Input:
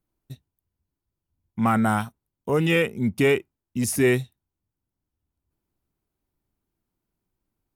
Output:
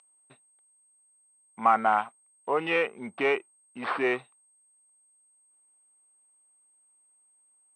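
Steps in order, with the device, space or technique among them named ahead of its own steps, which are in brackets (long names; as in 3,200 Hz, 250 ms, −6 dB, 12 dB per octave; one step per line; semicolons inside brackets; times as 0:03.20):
toy sound module (linearly interpolated sample-rate reduction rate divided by 4×; switching amplifier with a slow clock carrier 8,400 Hz; loudspeaker in its box 560–3,800 Hz, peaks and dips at 770 Hz +5 dB, 1,100 Hz +5 dB, 1,700 Hz −4 dB, 3,400 Hz −3 dB)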